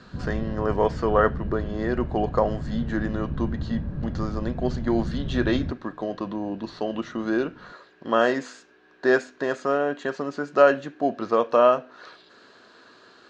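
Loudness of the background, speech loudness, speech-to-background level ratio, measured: -32.5 LUFS, -25.5 LUFS, 7.0 dB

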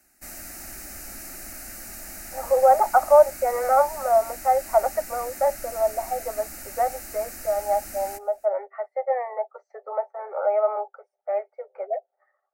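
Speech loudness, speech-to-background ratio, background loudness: -24.0 LUFS, 13.0 dB, -37.0 LUFS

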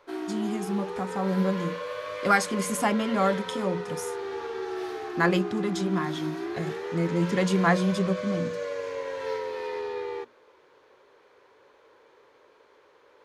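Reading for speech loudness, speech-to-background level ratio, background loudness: -27.5 LUFS, 6.5 dB, -34.0 LUFS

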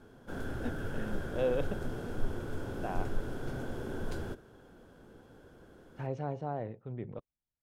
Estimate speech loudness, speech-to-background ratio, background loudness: -39.0 LUFS, 1.5 dB, -40.5 LUFS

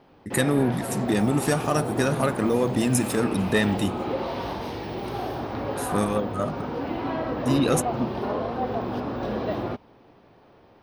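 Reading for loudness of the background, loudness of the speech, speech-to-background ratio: -30.0 LUFS, -25.0 LUFS, 5.0 dB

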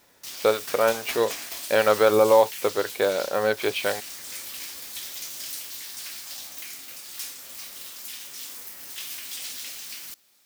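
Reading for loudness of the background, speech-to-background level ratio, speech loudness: -34.5 LUFS, 11.5 dB, -23.0 LUFS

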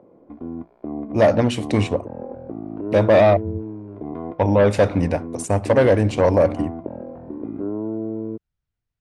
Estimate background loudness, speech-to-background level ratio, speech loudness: -31.5 LUFS, 13.0 dB, -18.5 LUFS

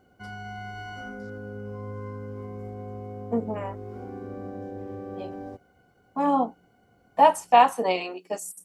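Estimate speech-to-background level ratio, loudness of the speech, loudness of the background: 15.0 dB, -23.5 LUFS, -38.5 LUFS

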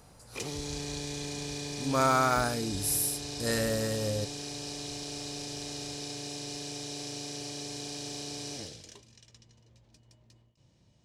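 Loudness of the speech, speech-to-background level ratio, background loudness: -29.5 LUFS, 8.0 dB, -37.5 LUFS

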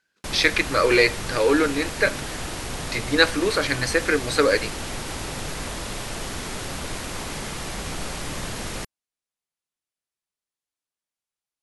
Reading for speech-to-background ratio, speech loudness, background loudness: 9.5 dB, -21.5 LUFS, -31.0 LUFS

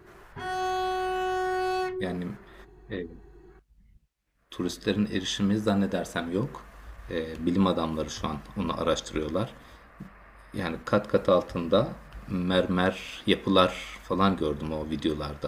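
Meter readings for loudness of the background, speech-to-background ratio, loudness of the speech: -30.0 LUFS, 2.0 dB, -28.0 LUFS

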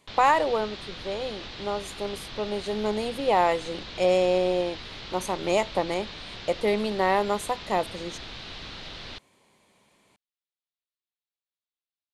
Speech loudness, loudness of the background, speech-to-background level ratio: -27.0 LUFS, -39.0 LUFS, 12.0 dB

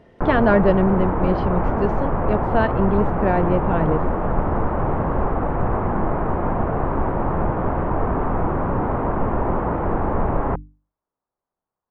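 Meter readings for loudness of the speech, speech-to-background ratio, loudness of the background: -21.5 LUFS, 1.5 dB, -23.0 LUFS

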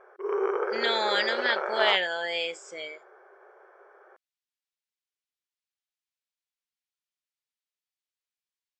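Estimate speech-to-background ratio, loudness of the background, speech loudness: 3.5 dB, -30.5 LUFS, -27.0 LUFS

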